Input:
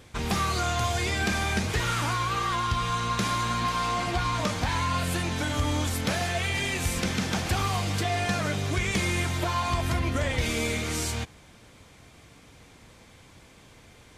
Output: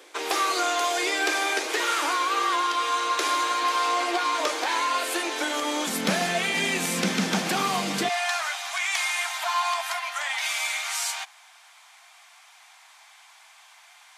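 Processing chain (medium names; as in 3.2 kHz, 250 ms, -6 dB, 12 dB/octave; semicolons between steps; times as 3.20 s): steep high-pass 300 Hz 72 dB/octave, from 5.86 s 160 Hz, from 8.08 s 700 Hz; trim +4 dB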